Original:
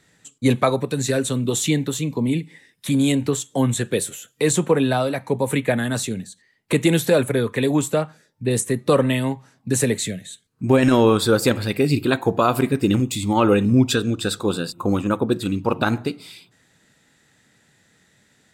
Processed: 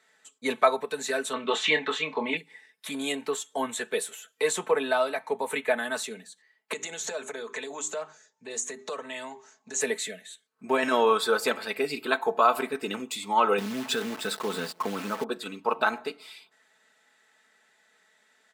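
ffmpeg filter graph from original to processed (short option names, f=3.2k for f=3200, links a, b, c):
-filter_complex "[0:a]asettb=1/sr,asplit=3[a][b][c];[a]atrim=end=1.334[d];[b]atrim=start=1.33:end=2.37,asetpts=PTS-STARTPTS,afade=t=in:d=0.004:c=qsin,afade=t=out:st=1.036:d=0.004:c=qsin,lowpass=3.9k,equalizer=f=1.7k:w=0.37:g=11.5,asplit=2[e][f];[f]adelay=26,volume=-9.5dB[g];[e][g]amix=inputs=2:normalize=0,atrim=end_sample=45864[h];[c]atrim=start=2.366[i];[d][h]acrossfade=d=0.004:c1=hsin:c2=qsin[j];[j][i]acrossfade=d=0.004:c1=qsin:c2=hsin,asettb=1/sr,asplit=3[k][l][m];[k]atrim=end=6.734[n];[l]atrim=start=6.73:end=9.81,asetpts=PTS-STARTPTS,afade=t=in:d=0.004:c=qsin,afade=t=out:st=3.076:d=0.004:c=qsin,bandreject=f=50:t=h:w=6,bandreject=f=100:t=h:w=6,bandreject=f=150:t=h:w=6,bandreject=f=200:t=h:w=6,bandreject=f=250:t=h:w=6,bandreject=f=300:t=h:w=6,bandreject=f=350:t=h:w=6,bandreject=f=400:t=h:w=6,acompressor=threshold=-25dB:ratio=6:attack=3.2:release=140:knee=1:detection=peak,lowpass=f=6.7k:t=q:w=9.4[o];[m]atrim=start=9.806[p];[n][o]acrossfade=d=0.004:c1=hsin:c2=qsin[q];[q][p]acrossfade=d=0.004:c1=qsin:c2=hsin,asettb=1/sr,asplit=3[r][s][t];[r]atrim=end=13.584[u];[s]atrim=start=13.58:end=15.24,asetpts=PTS-STARTPTS,afade=t=in:d=0.004:c=qsin,afade=t=out:st=1.656:d=0.004:c=qsin,equalizer=f=140:w=0.58:g=12.5,acompressor=threshold=-12dB:ratio=5:attack=3.2:release=140:knee=1:detection=peak,acrusher=bits=6:dc=4:mix=0:aa=0.000001[v];[t]atrim=start=15.236[w];[u][v]acrossfade=d=0.004:c1=hsin:c2=qsin[x];[x][w]acrossfade=d=0.004:c1=qsin:c2=hsin,highpass=720,highshelf=f=2.7k:g=-10.5,aecho=1:1:4.6:0.65"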